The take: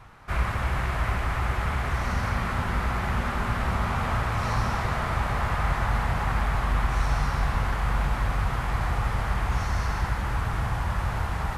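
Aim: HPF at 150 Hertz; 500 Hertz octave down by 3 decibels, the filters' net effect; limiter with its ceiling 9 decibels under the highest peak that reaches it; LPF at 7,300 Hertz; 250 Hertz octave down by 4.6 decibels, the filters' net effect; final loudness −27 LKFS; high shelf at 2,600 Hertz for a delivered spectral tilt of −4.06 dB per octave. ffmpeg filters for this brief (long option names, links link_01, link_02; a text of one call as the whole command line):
ffmpeg -i in.wav -af "highpass=150,lowpass=7300,equalizer=frequency=250:width_type=o:gain=-4,equalizer=frequency=500:width_type=o:gain=-3.5,highshelf=frequency=2600:gain=4.5,volume=7dB,alimiter=limit=-19dB:level=0:latency=1" out.wav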